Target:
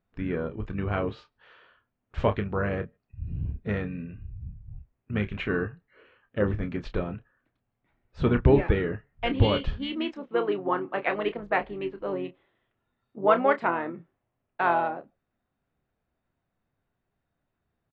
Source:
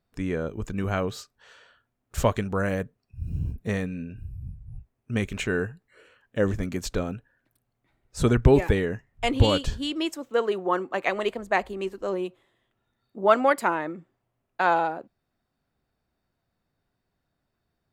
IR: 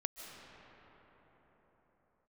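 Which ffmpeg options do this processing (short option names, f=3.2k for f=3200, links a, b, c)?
-filter_complex "[0:a]lowpass=f=3.3k:w=0.5412,lowpass=f=3.3k:w=1.3066,asplit=2[a][b];[b]asetrate=33038,aresample=44100,atempo=1.33484,volume=-9dB[c];[a][c]amix=inputs=2:normalize=0,asplit=2[d][e];[1:a]atrim=start_sample=2205,afade=t=out:st=0.17:d=0.01,atrim=end_sample=7938,adelay=29[f];[e][f]afir=irnorm=-1:irlink=0,volume=-8dB[g];[d][g]amix=inputs=2:normalize=0,volume=-2.5dB"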